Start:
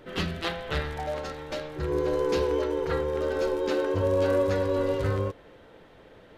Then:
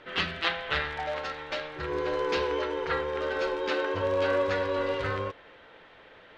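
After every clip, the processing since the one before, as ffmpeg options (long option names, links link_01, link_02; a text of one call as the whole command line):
ffmpeg -i in.wav -af "lowpass=3100,tiltshelf=frequency=730:gain=-9" out.wav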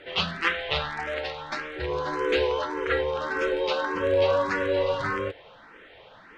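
ffmpeg -i in.wav -filter_complex "[0:a]asplit=2[link_01][link_02];[link_02]afreqshift=1.7[link_03];[link_01][link_03]amix=inputs=2:normalize=1,volume=6dB" out.wav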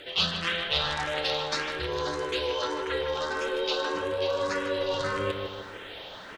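ffmpeg -i in.wav -filter_complex "[0:a]areverse,acompressor=threshold=-34dB:ratio=6,areverse,aexciter=amount=2.4:drive=7.7:freq=3000,asplit=2[link_01][link_02];[link_02]adelay=153,lowpass=frequency=2000:poles=1,volume=-4.5dB,asplit=2[link_03][link_04];[link_04]adelay=153,lowpass=frequency=2000:poles=1,volume=0.51,asplit=2[link_05][link_06];[link_06]adelay=153,lowpass=frequency=2000:poles=1,volume=0.51,asplit=2[link_07][link_08];[link_08]adelay=153,lowpass=frequency=2000:poles=1,volume=0.51,asplit=2[link_09][link_10];[link_10]adelay=153,lowpass=frequency=2000:poles=1,volume=0.51,asplit=2[link_11][link_12];[link_12]adelay=153,lowpass=frequency=2000:poles=1,volume=0.51,asplit=2[link_13][link_14];[link_14]adelay=153,lowpass=frequency=2000:poles=1,volume=0.51[link_15];[link_01][link_03][link_05][link_07][link_09][link_11][link_13][link_15]amix=inputs=8:normalize=0,volume=5dB" out.wav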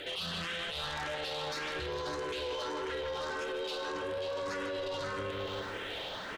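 ffmpeg -i in.wav -af "acompressor=threshold=-30dB:ratio=6,alimiter=level_in=5.5dB:limit=-24dB:level=0:latency=1:release=12,volume=-5.5dB,asoftclip=type=tanh:threshold=-34dB,volume=3dB" out.wav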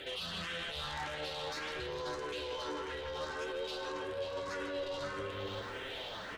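ffmpeg -i in.wav -af "flanger=delay=7.6:depth=6.8:regen=44:speed=0.51:shape=sinusoidal,aeval=exprs='val(0)+0.000708*(sin(2*PI*60*n/s)+sin(2*PI*2*60*n/s)/2+sin(2*PI*3*60*n/s)/3+sin(2*PI*4*60*n/s)/4+sin(2*PI*5*60*n/s)/5)':channel_layout=same,volume=1dB" out.wav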